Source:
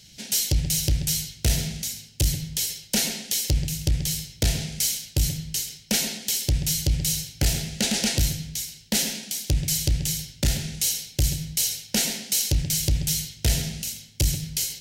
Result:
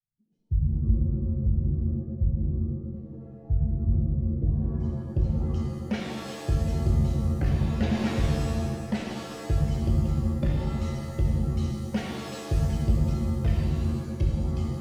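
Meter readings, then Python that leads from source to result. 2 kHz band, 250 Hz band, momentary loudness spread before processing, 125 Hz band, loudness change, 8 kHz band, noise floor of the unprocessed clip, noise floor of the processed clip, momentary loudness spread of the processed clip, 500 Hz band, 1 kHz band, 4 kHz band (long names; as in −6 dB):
−8.0 dB, +3.0 dB, 5 LU, +2.0 dB, −3.0 dB, −25.5 dB, −50 dBFS, −43 dBFS, 6 LU, +2.0 dB, +3.5 dB, −18.5 dB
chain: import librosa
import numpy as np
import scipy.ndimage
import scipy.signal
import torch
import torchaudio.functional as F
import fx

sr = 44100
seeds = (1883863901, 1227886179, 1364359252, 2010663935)

y = fx.bin_expand(x, sr, power=2.0)
y = fx.filter_sweep_lowpass(y, sr, from_hz=110.0, to_hz=1500.0, start_s=4.09, end_s=5.37, q=0.86)
y = fx.rev_shimmer(y, sr, seeds[0], rt60_s=1.6, semitones=7, shimmer_db=-2, drr_db=-0.5)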